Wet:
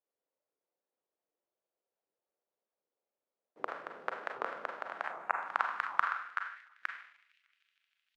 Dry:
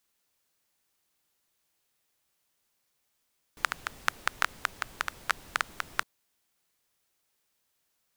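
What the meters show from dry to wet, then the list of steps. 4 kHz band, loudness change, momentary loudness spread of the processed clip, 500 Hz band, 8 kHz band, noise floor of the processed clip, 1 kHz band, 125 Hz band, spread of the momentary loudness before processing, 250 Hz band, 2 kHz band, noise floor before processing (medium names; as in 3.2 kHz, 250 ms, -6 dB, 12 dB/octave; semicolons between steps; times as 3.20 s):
-15.5 dB, -4.0 dB, 11 LU, +4.5 dB, under -25 dB, under -85 dBFS, 0.0 dB, under -15 dB, 4 LU, -3.5 dB, -4.5 dB, -77 dBFS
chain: chunks repeated in reverse 584 ms, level -10 dB; high-pass 140 Hz 24 dB/octave; gate -55 dBFS, range -7 dB; spectral selection erased 5.07–5.34 s, 2.8–6.3 kHz; treble shelf 5.2 kHz -8 dB; feedback echo behind a high-pass 154 ms, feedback 78%, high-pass 2.5 kHz, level -23.5 dB; Schroeder reverb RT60 0.67 s, combs from 33 ms, DRR 3 dB; band-pass sweep 510 Hz -> 2.8 kHz, 4.57–7.66 s; warped record 78 rpm, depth 250 cents; trim +5.5 dB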